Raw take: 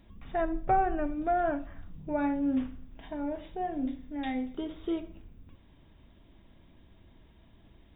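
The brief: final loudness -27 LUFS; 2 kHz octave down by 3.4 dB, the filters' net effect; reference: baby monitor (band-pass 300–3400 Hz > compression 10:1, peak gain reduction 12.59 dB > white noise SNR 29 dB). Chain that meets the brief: band-pass 300–3400 Hz; peaking EQ 2 kHz -4.5 dB; compression 10:1, threshold -34 dBFS; white noise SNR 29 dB; trim +13 dB

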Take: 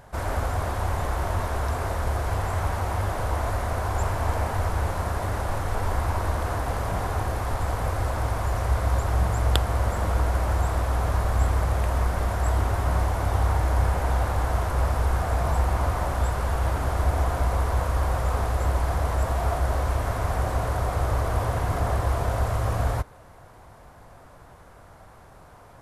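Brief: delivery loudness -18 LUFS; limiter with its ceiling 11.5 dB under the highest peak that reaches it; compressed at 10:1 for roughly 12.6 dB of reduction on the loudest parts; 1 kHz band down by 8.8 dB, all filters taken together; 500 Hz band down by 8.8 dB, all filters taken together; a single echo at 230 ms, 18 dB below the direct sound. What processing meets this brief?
peaking EQ 500 Hz -8.5 dB; peaking EQ 1 kHz -8.5 dB; compression 10:1, threshold -32 dBFS; peak limiter -31.5 dBFS; delay 230 ms -18 dB; trim +23 dB

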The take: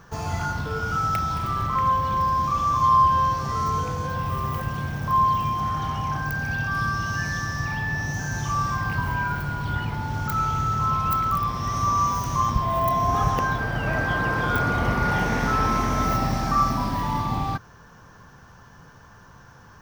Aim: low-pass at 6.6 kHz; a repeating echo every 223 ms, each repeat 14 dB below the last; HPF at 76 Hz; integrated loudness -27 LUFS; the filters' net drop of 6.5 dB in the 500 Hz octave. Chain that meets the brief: high-pass 76 Hz; low-pass 6.6 kHz; peaking EQ 500 Hz -9 dB; feedback delay 223 ms, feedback 20%, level -14 dB; trim -1.5 dB

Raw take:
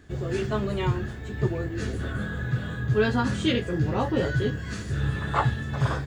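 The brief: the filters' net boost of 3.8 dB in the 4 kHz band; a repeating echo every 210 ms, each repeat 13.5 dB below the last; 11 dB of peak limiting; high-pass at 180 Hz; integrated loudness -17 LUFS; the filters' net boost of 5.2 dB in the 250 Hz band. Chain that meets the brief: high-pass 180 Hz; peaking EQ 250 Hz +8.5 dB; peaking EQ 4 kHz +5 dB; peak limiter -18.5 dBFS; feedback delay 210 ms, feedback 21%, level -13.5 dB; trim +11.5 dB

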